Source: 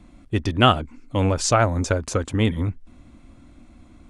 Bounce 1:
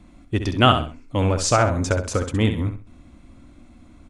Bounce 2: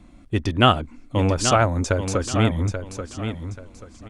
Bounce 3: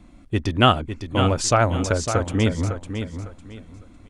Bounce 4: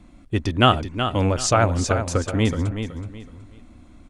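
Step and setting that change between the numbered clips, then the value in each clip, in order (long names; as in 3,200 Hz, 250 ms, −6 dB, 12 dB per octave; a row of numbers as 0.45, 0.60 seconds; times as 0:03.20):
repeating echo, delay time: 65, 834, 554, 374 milliseconds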